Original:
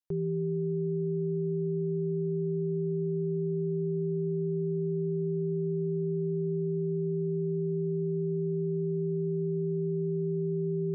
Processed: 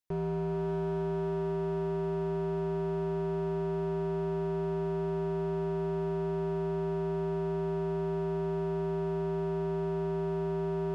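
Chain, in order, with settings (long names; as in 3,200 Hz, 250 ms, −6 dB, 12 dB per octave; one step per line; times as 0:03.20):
feedback delay with all-pass diffusion 532 ms, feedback 43%, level −12 dB
hard clipping −31.5 dBFS, distortion −10 dB
level +2 dB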